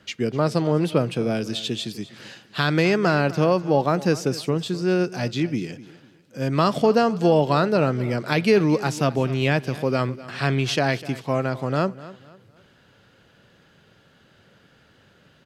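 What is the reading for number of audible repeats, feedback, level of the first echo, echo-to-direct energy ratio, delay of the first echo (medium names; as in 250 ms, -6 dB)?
2, 33%, -17.5 dB, -17.0 dB, 251 ms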